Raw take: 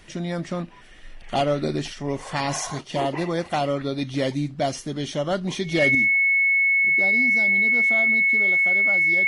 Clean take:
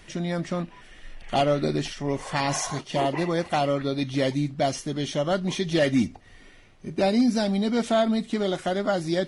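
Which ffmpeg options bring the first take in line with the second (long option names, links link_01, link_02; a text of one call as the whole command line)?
ffmpeg -i in.wav -af "bandreject=frequency=2200:width=30,asetnsamples=nb_out_samples=441:pad=0,asendcmd='5.95 volume volume 10dB',volume=0dB" out.wav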